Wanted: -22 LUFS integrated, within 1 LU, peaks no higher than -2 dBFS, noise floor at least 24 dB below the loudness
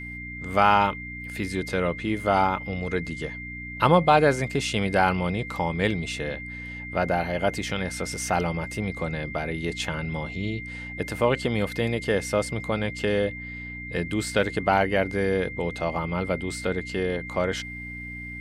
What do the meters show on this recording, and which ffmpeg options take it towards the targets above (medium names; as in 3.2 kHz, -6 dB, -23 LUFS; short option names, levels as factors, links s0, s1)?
hum 60 Hz; highest harmonic 300 Hz; hum level -37 dBFS; steady tone 2.1 kHz; tone level -36 dBFS; loudness -26.0 LUFS; peak level -5.0 dBFS; loudness target -22.0 LUFS
-> -af "bandreject=f=60:t=h:w=4,bandreject=f=120:t=h:w=4,bandreject=f=180:t=h:w=4,bandreject=f=240:t=h:w=4,bandreject=f=300:t=h:w=4"
-af "bandreject=f=2100:w=30"
-af "volume=1.58,alimiter=limit=0.794:level=0:latency=1"